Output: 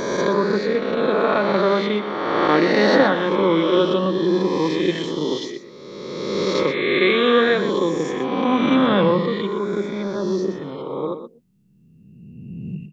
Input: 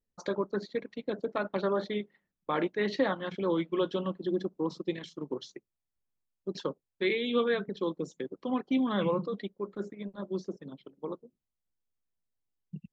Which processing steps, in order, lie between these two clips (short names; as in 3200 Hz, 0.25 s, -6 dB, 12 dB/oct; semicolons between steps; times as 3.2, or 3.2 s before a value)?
spectral swells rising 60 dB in 2.01 s; echo 0.122 s -11 dB; gain +9 dB